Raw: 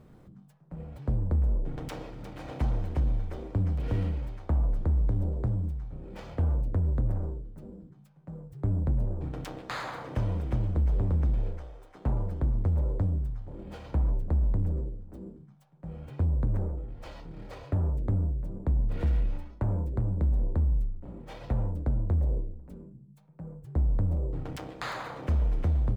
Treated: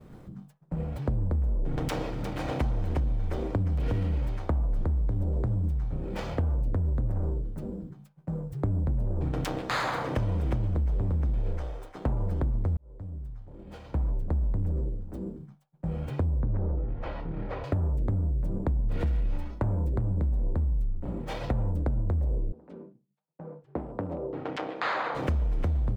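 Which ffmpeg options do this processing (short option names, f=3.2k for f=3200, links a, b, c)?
-filter_complex "[0:a]asettb=1/sr,asplit=3[a][b][c];[a]atrim=end=16.404[d];[b]atrim=start=16.4:end=17.64,asetpts=PTS-STARTPTS,afade=t=in:d=0.004:c=qsin,afade=t=out:st=1.236:d=0.004:c=qsin,lowpass=2.1k[e];[c]atrim=start=17.636[f];[d][e]acrossfade=d=0.004:c1=hsin:c2=qsin[g];[g][f]acrossfade=d=0.004:c1=qsin:c2=hsin,asettb=1/sr,asplit=3[h][i][j];[h]atrim=end=22.524[k];[i]atrim=start=22.52:end=25.15,asetpts=PTS-STARTPTS,afade=t=in:d=0.004:c=qsin,afade=t=out:st=2.626:d=0.004:c=qsin,highpass=320,lowpass=3.2k[l];[j]atrim=start=25.146[m];[k][l]acrossfade=d=0.004:c1=hsin:c2=qsin[n];[n][m]acrossfade=d=0.004:c1=qsin:c2=hsin,asplit=2[o][p];[o]atrim=end=12.77,asetpts=PTS-STARTPTS,afade=t=out:st=12.766:d=0.004:c=hsin[q];[p]atrim=start=12.77,asetpts=PTS-STARTPTS,afade=t=in:d=3.12[r];[q][r]concat=n=2:v=0:a=1,agate=range=-33dB:threshold=-50dB:ratio=3:detection=peak,alimiter=level_in=1dB:limit=-24dB:level=0:latency=1:release=51,volume=-1dB,acompressor=threshold=-33dB:ratio=6,volume=9dB"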